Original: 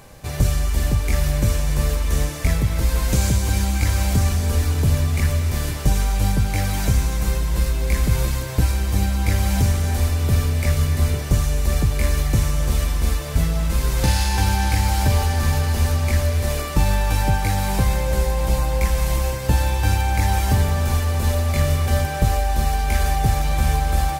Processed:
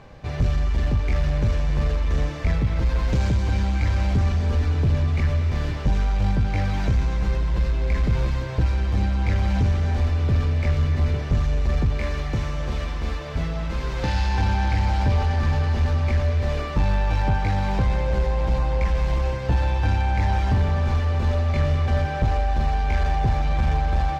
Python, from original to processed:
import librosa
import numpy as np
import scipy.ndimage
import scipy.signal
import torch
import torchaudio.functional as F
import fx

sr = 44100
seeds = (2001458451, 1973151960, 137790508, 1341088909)

y = fx.low_shelf(x, sr, hz=200.0, db=-7.0, at=(11.97, 14.14))
y = 10.0 ** (-12.5 / 20.0) * np.tanh(y / 10.0 ** (-12.5 / 20.0))
y = fx.air_absorb(y, sr, metres=200.0)